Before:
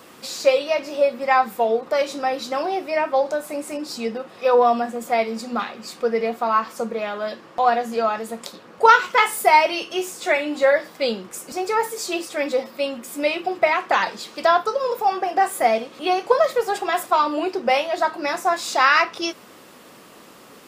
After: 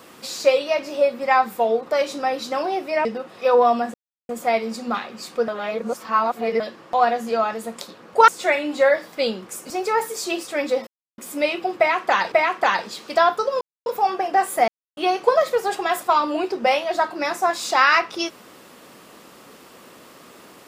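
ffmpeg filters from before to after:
-filter_complex "[0:a]asplit=12[s0][s1][s2][s3][s4][s5][s6][s7][s8][s9][s10][s11];[s0]atrim=end=3.052[s12];[s1]atrim=start=4.048:end=4.94,asetpts=PTS-STARTPTS,afade=t=out:st=0.888:d=0.004:c=hsin,apad=pad_dur=0.35[s13];[s2]atrim=start=4.94:end=6.132,asetpts=PTS-STARTPTS,afade=t=in:d=0.004:c=hsin[s14];[s3]atrim=start=6.128:end=7.252,asetpts=PTS-STARTPTS,areverse[s15];[s4]atrim=start=7.248:end=8.932[s16];[s5]atrim=start=10.098:end=12.69,asetpts=PTS-STARTPTS,afade=t=out:st=2.588:d=0.004:c=hsin[s17];[s6]atrim=start=12.69:end=13,asetpts=PTS-STARTPTS,volume=0[s18];[s7]atrim=start=13:end=14.142,asetpts=PTS-STARTPTS,afade=t=in:d=0.004:c=hsin[s19];[s8]atrim=start=13.598:end=14.89,asetpts=PTS-STARTPTS,afade=t=out:st=1.288:d=0.004:c=hsin,apad=pad_dur=0.25[s20];[s9]atrim=start=14.89:end=15.71,asetpts=PTS-STARTPTS,afade=t=in:d=0.004:c=hsin,afade=t=out:st=0.816:d=0.004:c=hsin[s21];[s10]atrim=start=15.71:end=16,asetpts=PTS-STARTPTS,volume=0[s22];[s11]atrim=start=16,asetpts=PTS-STARTPTS,afade=t=in:d=0.004:c=hsin[s23];[s13][s14]concat=n=2:v=0:a=1[s24];[s12][s24]acrossfade=d=0.004:c1=hsin:c2=hsin[s25];[s25][s15]acrossfade=d=0.004:c1=hsin:c2=hsin[s26];[s26][s16]acrossfade=d=0.004:c1=hsin:c2=hsin[s27];[s17][s18][s19]concat=n=3:v=0:a=1[s28];[s27][s28]acrossfade=d=0.004:c1=hsin:c2=hsin[s29];[s20][s21][s22][s23]concat=n=4:v=0:a=1[s30];[s29][s30]acrossfade=d=0.004:c1=hsin:c2=hsin"

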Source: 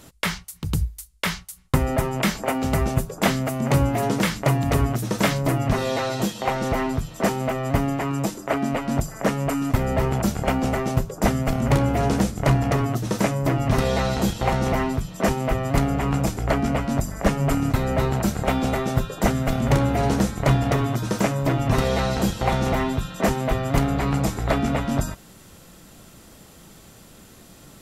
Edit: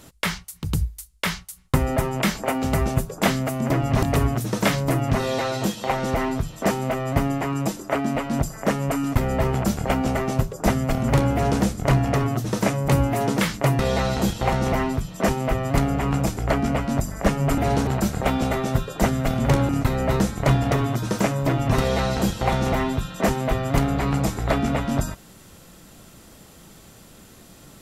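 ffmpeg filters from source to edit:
-filter_complex "[0:a]asplit=9[s0][s1][s2][s3][s4][s5][s6][s7][s8];[s0]atrim=end=3.702[s9];[s1]atrim=start=13.458:end=13.792[s10];[s2]atrim=start=4.608:end=13.462[s11];[s3]atrim=start=3.698:end=4.612[s12];[s4]atrim=start=13.788:end=17.582[s13];[s5]atrim=start=19.908:end=20.202[s14];[s6]atrim=start=18.088:end=19.912[s15];[s7]atrim=start=17.578:end=18.092[s16];[s8]atrim=start=20.198[s17];[s9][s10]acrossfade=d=0.004:c1=hsin:c2=hsin[s18];[s18][s11]acrossfade=d=0.004:c1=hsin:c2=hsin[s19];[s19][s12]acrossfade=d=0.004:c1=hsin:c2=hsin[s20];[s20][s13]acrossfade=d=0.004:c1=hsin:c2=hsin[s21];[s21][s14]acrossfade=d=0.004:c1=hsin:c2=hsin[s22];[s22][s15]acrossfade=d=0.004:c1=hsin:c2=hsin[s23];[s23][s16]acrossfade=d=0.004:c1=hsin:c2=hsin[s24];[s24][s17]acrossfade=d=0.004:c1=hsin:c2=hsin"

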